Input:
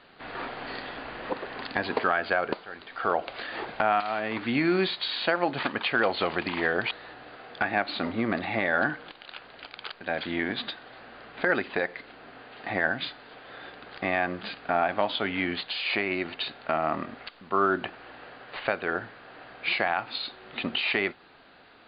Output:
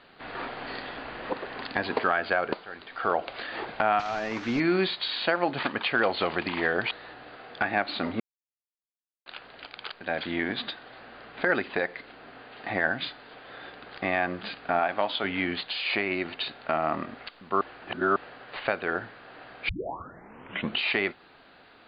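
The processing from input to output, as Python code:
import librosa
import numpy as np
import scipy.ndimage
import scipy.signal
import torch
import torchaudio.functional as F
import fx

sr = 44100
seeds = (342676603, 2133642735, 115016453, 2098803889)

y = fx.delta_mod(x, sr, bps=32000, step_db=-39.0, at=(3.99, 4.6))
y = fx.low_shelf(y, sr, hz=240.0, db=-7.5, at=(14.79, 15.24))
y = fx.edit(y, sr, fx.silence(start_s=8.2, length_s=1.06),
    fx.reverse_span(start_s=17.61, length_s=0.55),
    fx.tape_start(start_s=19.69, length_s=1.09), tone=tone)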